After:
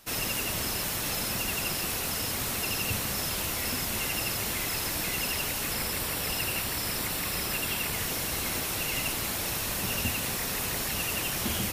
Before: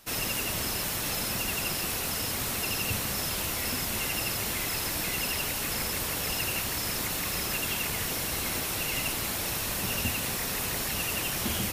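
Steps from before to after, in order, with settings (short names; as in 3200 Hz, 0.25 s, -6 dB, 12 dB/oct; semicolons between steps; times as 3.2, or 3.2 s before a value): 5.72–7.93 notch 6500 Hz, Q 9.8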